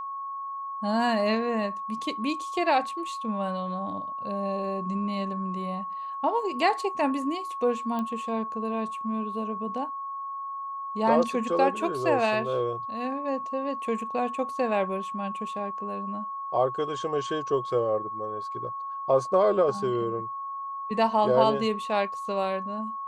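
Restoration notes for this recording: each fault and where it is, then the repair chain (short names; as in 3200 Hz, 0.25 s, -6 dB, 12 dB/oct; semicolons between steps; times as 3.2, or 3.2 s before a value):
tone 1100 Hz -32 dBFS
7.99 pop -20 dBFS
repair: de-click; notch 1100 Hz, Q 30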